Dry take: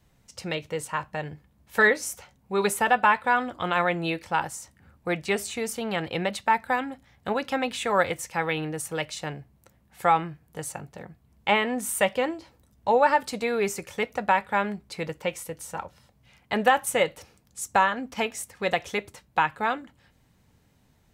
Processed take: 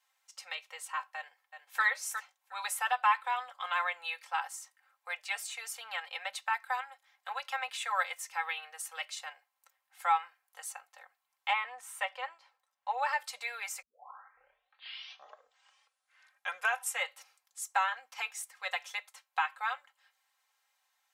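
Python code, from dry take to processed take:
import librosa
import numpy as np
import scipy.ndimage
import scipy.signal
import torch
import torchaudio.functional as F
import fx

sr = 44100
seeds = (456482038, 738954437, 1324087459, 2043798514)

y = fx.echo_throw(x, sr, start_s=1.16, length_s=0.67, ms=360, feedback_pct=15, wet_db=-8.5)
y = fx.lowpass(y, sr, hz=2400.0, slope=6, at=(11.53, 12.98))
y = fx.edit(y, sr, fx.tape_start(start_s=13.82, length_s=3.25), tone=tone)
y = scipy.signal.sosfilt(scipy.signal.cheby2(4, 50, 320.0, 'highpass', fs=sr, output='sos'), y)
y = y + 0.74 * np.pad(y, (int(3.8 * sr / 1000.0), 0))[:len(y)]
y = y * 10.0 ** (-7.5 / 20.0)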